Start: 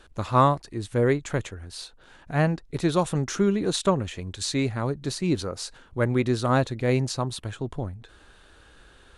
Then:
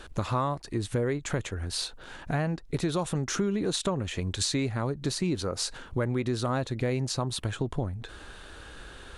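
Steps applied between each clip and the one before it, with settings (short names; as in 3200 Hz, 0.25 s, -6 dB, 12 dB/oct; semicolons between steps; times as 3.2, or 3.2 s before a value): in parallel at +3 dB: limiter -17.5 dBFS, peak gain reduction 10.5 dB; on the sum: compressor 4:1, threshold -27 dBFS, peak gain reduction 14 dB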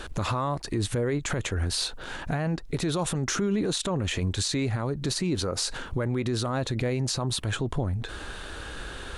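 limiter -26.5 dBFS, peak gain reduction 11 dB; gain +7.5 dB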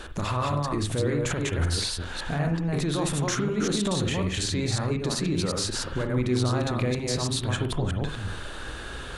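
reverse delay 0.184 s, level -2 dB; on a send at -7 dB: reverb, pre-delay 47 ms; on the sum: gain -1.5 dB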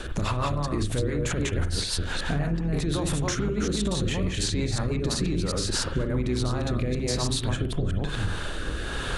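octaver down 2 oct, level -3 dB; rotary speaker horn 6 Hz, later 1.1 Hz, at 5.15; compressor, threshold -31 dBFS, peak gain reduction 11.5 dB; gain +8 dB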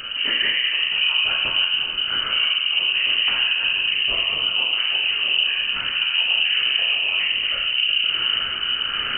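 whisperiser; plate-style reverb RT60 1.5 s, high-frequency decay 0.35×, DRR -2.5 dB; inverted band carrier 3000 Hz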